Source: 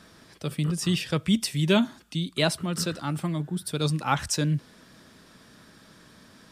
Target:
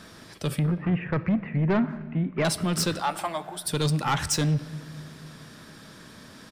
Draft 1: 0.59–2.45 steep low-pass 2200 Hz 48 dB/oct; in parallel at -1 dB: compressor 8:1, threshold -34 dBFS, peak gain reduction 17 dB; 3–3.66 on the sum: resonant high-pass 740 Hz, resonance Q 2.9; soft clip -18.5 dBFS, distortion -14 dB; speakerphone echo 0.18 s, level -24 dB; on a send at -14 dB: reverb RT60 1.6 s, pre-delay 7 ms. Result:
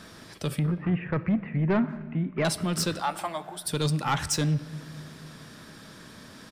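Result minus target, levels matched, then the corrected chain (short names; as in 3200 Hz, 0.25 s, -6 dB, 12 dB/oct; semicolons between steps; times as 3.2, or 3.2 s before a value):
compressor: peak gain reduction +9 dB
0.59–2.45 steep low-pass 2200 Hz 48 dB/oct; in parallel at -1 dB: compressor 8:1, threshold -23.5 dBFS, peak gain reduction 7.5 dB; 3–3.66 on the sum: resonant high-pass 740 Hz, resonance Q 2.9; soft clip -18.5 dBFS, distortion -12 dB; speakerphone echo 0.18 s, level -24 dB; on a send at -14 dB: reverb RT60 1.6 s, pre-delay 7 ms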